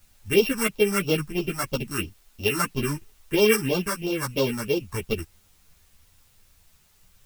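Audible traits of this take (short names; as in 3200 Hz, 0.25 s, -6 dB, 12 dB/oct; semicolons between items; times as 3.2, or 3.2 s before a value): a buzz of ramps at a fixed pitch in blocks of 16 samples; phasing stages 4, 3 Hz, lowest notch 470–1800 Hz; a quantiser's noise floor 10-bit, dither triangular; a shimmering, thickened sound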